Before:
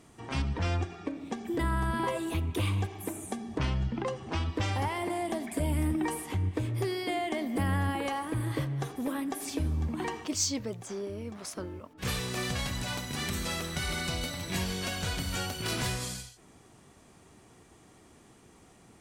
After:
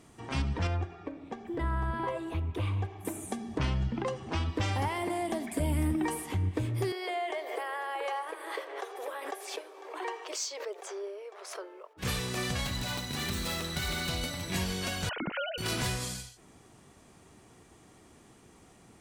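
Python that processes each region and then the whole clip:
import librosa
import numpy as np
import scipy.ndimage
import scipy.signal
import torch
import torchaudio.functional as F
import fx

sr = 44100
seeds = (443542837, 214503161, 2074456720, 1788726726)

y = fx.chain(x, sr, fx.lowpass(hz=1400.0, slope=6),
    fx.peak_eq(hz=220.0, db=-7.5, octaves=1.2), at=(0.67, 3.05))
y = fx.chain(y, sr, fx.steep_highpass(hz=380.0, slope=72),
    fx.high_shelf(hz=4300.0, db=-10.0),
    fx.pre_swell(db_per_s=57.0), at=(6.92, 11.97))
y = fx.chain(y, sr, fx.self_delay(depth_ms=0.075),
    fx.peak_eq(hz=4000.0, db=5.0, octaves=0.25), at=(12.64, 14.21))
y = fx.chain(y, sr, fx.sine_speech(),
    fx.gate_hold(open_db=-26.0, close_db=-28.0, hold_ms=71.0, range_db=-21, attack_ms=1.4, release_ms=100.0),
    fx.high_shelf(hz=2700.0, db=-9.0), at=(15.09, 15.58))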